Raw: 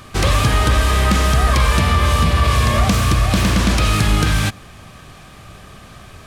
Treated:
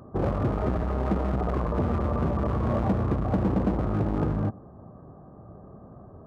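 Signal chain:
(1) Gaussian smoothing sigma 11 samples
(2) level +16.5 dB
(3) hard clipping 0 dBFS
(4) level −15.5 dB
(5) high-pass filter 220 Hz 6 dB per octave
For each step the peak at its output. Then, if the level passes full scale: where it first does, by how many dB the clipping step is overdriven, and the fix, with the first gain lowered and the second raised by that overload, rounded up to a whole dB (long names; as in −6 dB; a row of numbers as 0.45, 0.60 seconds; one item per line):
−6.5, +10.0, 0.0, −15.5, −12.0 dBFS
step 2, 10.0 dB
step 2 +6.5 dB, step 4 −5.5 dB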